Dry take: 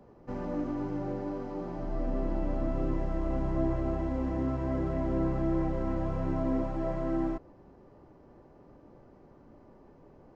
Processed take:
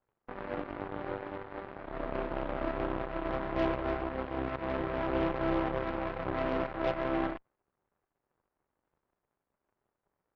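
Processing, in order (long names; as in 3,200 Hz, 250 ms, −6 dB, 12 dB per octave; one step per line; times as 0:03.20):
variable-slope delta modulation 16 kbit/s
flat-topped bell 730 Hz +11 dB 2.4 octaves
harmonic generator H 3 −35 dB, 5 −39 dB, 6 −23 dB, 7 −17 dB, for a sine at −12 dBFS
level −6.5 dB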